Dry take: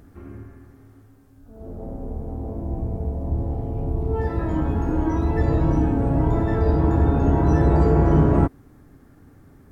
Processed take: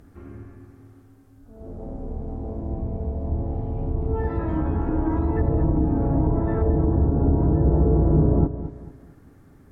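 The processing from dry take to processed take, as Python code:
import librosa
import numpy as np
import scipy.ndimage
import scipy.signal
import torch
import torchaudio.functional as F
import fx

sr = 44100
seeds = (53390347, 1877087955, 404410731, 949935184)

p1 = fx.env_lowpass_down(x, sr, base_hz=600.0, full_db=-14.0)
p2 = p1 + fx.echo_feedback(p1, sr, ms=222, feedback_pct=36, wet_db=-12.5, dry=0)
y = p2 * librosa.db_to_amplitude(-1.5)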